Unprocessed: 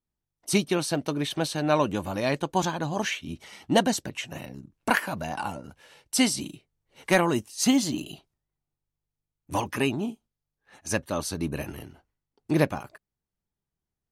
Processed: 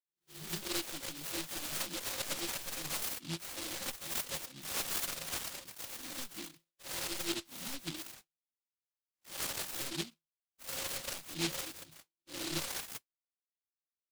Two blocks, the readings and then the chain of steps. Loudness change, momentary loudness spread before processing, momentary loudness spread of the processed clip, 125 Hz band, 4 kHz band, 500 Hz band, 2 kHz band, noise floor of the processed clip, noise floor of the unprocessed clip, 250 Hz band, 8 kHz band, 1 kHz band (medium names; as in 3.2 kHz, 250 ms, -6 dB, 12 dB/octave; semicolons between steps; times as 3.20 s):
-11.0 dB, 16 LU, 11 LU, -17.0 dB, -5.5 dB, -18.5 dB, -12.0 dB, under -85 dBFS, under -85 dBFS, -18.5 dB, -5.0 dB, -17.0 dB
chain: reverse spectral sustain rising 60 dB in 0.45 s; overdrive pedal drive 27 dB, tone 2.9 kHz, clips at -6 dBFS; low-pass 4.1 kHz 24 dB/octave; compression 6:1, threshold -28 dBFS, peak gain reduction 15.5 dB; spectral noise reduction 12 dB; gate -53 dBFS, range -21 dB; inharmonic resonator 160 Hz, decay 0.22 s, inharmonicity 0.03; reverb removal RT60 1 s; delay time shaken by noise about 3.5 kHz, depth 0.45 ms; trim +2 dB